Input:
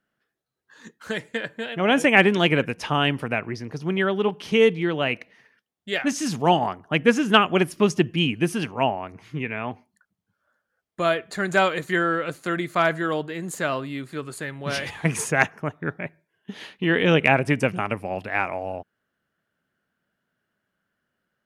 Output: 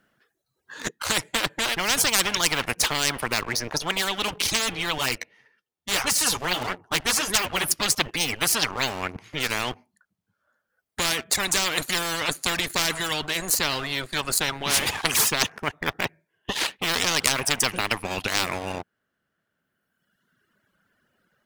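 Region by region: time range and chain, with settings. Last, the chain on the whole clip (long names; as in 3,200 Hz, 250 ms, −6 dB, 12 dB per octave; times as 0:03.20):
0:04.98–0:07.71: flanger 1.7 Hz, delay 4.6 ms, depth 8.7 ms, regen +2% + comb filter 2.2 ms, depth 31%
whole clip: leveller curve on the samples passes 2; reverb reduction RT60 1.5 s; every bin compressed towards the loudest bin 10 to 1; level +1.5 dB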